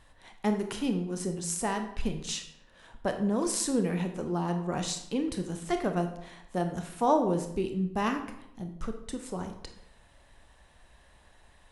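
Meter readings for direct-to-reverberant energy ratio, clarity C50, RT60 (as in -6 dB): 5.5 dB, 8.5 dB, 0.75 s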